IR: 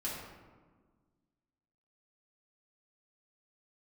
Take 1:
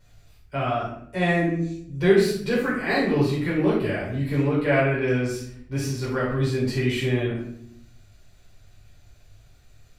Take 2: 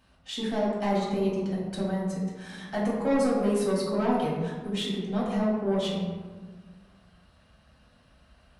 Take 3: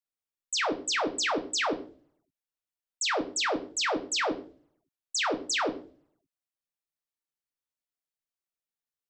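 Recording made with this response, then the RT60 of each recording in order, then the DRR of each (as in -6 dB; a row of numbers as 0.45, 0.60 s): 2; 0.65, 1.5, 0.45 s; -8.5, -6.5, 4.5 dB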